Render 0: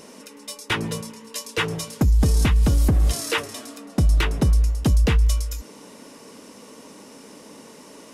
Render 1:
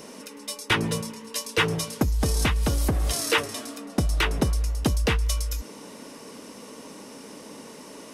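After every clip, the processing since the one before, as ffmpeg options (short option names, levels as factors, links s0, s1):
-filter_complex "[0:a]bandreject=f=7100:w=19,acrossover=split=370|6200[s0][s1][s2];[s0]acompressor=threshold=0.0631:ratio=6[s3];[s3][s1][s2]amix=inputs=3:normalize=0,volume=1.19"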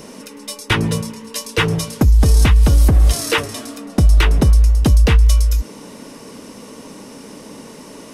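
-af "lowshelf=f=140:g=11.5,volume=1.68"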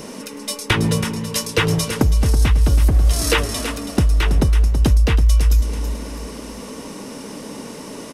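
-filter_complex "[0:a]acompressor=threshold=0.158:ratio=6,asplit=2[s0][s1];[s1]aecho=0:1:327|654|981|1308:0.316|0.117|0.0433|0.016[s2];[s0][s2]amix=inputs=2:normalize=0,volume=1.41"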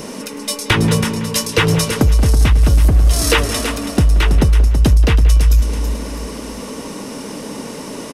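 -filter_complex "[0:a]acontrast=36,asplit=2[s0][s1];[s1]adelay=180,highpass=300,lowpass=3400,asoftclip=type=hard:threshold=0.355,volume=0.251[s2];[s0][s2]amix=inputs=2:normalize=0,volume=0.891"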